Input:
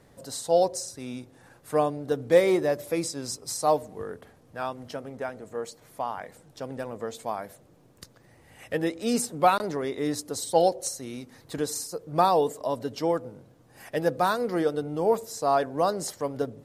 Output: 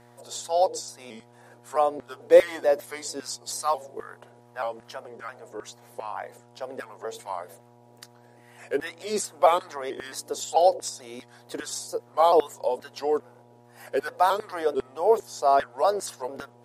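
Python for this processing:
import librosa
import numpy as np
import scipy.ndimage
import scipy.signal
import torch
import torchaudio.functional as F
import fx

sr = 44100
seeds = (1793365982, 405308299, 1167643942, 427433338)

y = fx.pitch_trill(x, sr, semitones=-2.0, every_ms=220)
y = fx.filter_lfo_highpass(y, sr, shape='saw_down', hz=2.5, low_hz=350.0, high_hz=1600.0, q=1.7)
y = fx.dmg_buzz(y, sr, base_hz=120.0, harmonics=8, level_db=-55.0, tilt_db=-2, odd_only=False)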